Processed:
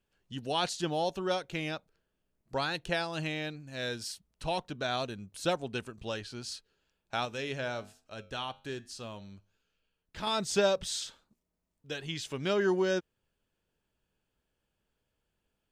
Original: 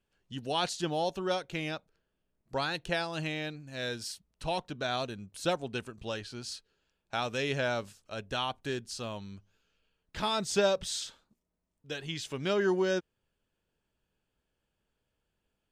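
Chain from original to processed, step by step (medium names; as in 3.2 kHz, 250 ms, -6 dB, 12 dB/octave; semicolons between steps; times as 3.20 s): 7.25–10.27 s: flange 1.2 Hz, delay 9.7 ms, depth 1.1 ms, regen -85%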